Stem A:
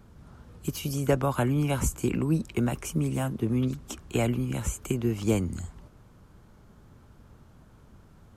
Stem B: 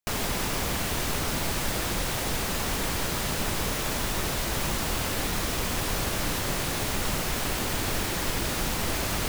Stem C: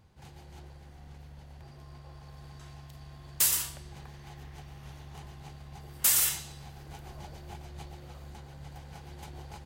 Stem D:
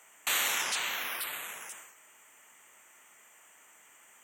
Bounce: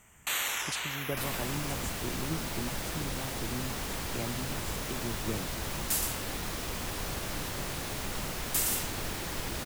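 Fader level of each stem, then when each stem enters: -12.0, -7.5, -6.0, -2.5 dB; 0.00, 1.10, 2.50, 0.00 s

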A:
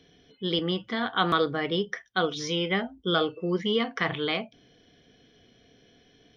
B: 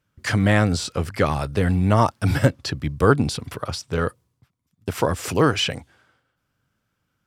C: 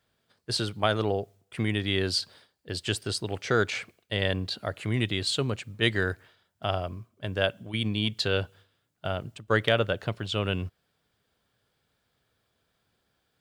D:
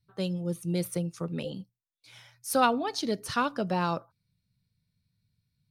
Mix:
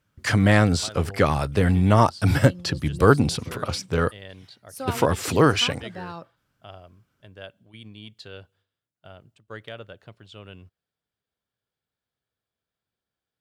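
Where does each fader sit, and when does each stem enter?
off, +0.5 dB, -15.0 dB, -8.5 dB; off, 0.00 s, 0.00 s, 2.25 s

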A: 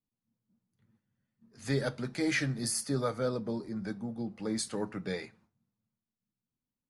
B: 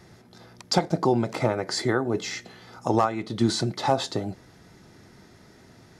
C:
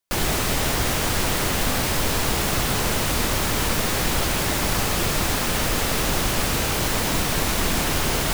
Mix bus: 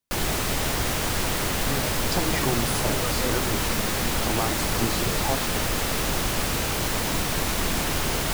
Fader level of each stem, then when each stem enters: -1.5, -7.0, -3.0 dB; 0.00, 1.40, 0.00 s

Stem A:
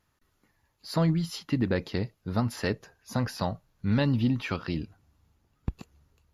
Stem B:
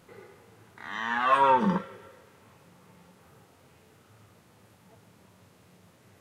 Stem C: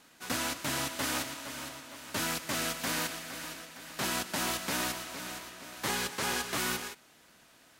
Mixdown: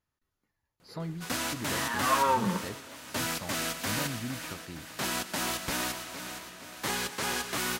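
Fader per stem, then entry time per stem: -12.5, -4.5, +0.5 dB; 0.00, 0.80, 1.00 s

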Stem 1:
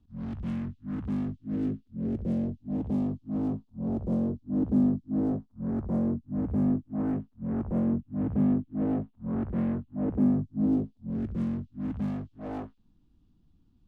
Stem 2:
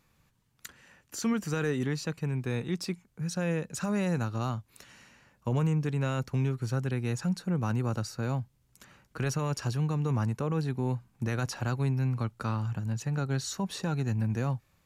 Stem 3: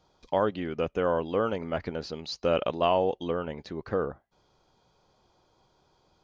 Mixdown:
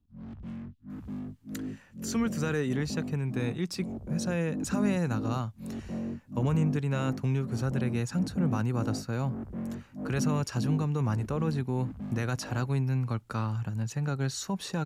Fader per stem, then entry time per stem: -7.5 dB, 0.0 dB, off; 0.00 s, 0.90 s, off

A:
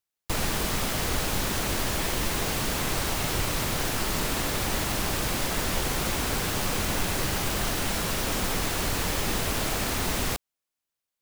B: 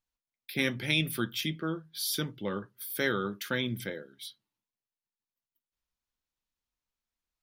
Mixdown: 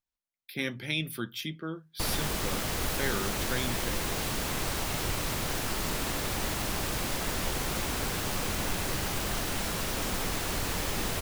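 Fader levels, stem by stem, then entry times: -4.0, -3.5 dB; 1.70, 0.00 s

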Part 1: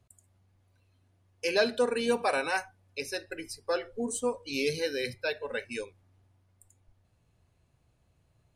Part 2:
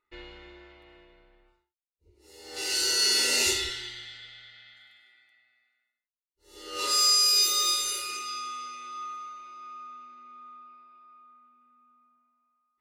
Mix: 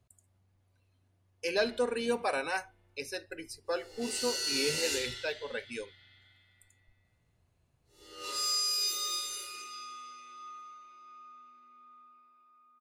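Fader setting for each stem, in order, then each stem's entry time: -3.5, -9.0 dB; 0.00, 1.45 s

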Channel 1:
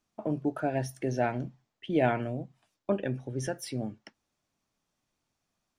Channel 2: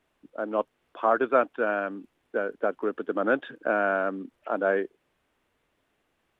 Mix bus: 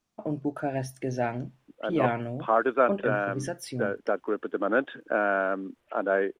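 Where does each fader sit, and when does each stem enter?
0.0, -0.5 dB; 0.00, 1.45 s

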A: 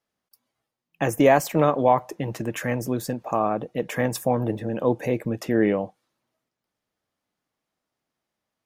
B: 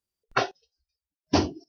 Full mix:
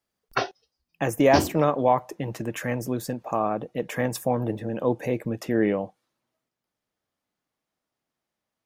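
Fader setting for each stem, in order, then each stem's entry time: -2.0, -1.0 dB; 0.00, 0.00 s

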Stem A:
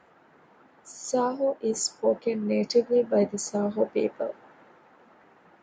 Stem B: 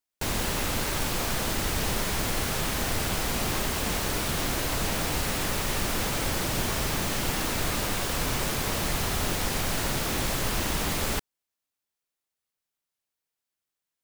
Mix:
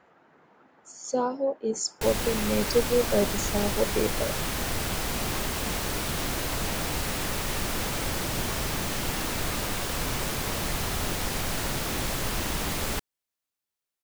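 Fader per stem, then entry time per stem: -1.5, -1.5 dB; 0.00, 1.80 s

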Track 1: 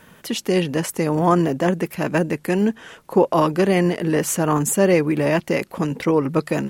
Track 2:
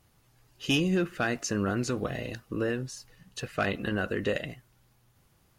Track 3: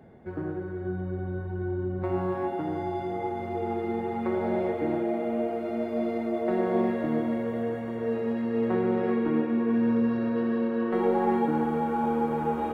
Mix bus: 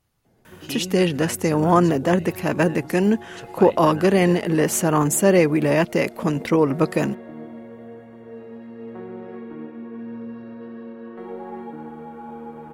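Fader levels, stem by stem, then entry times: +0.5, -6.5, -10.0 dB; 0.45, 0.00, 0.25 s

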